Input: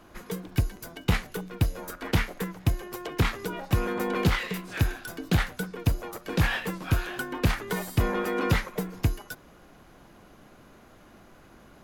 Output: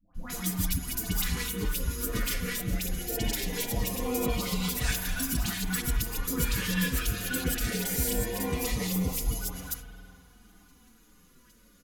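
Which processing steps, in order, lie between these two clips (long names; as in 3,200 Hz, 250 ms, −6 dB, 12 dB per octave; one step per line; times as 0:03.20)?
delay that plays each chunk backwards 135 ms, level −1 dB
noise gate −46 dBFS, range −17 dB
bass and treble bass +3 dB, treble +15 dB
comb filter 4.1 ms, depth 56%
downward compressor 5 to 1, threshold −28 dBFS, peak gain reduction 13.5 dB
soft clipping −25.5 dBFS, distortion −15 dB
all-pass dispersion highs, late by 148 ms, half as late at 890 Hz
auto-filter notch saw up 0.21 Hz 390–1,900 Hz
spring reverb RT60 2.7 s, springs 49 ms, chirp 65 ms, DRR 7.5 dB
barber-pole flanger 6.9 ms −1.8 Hz
level +6.5 dB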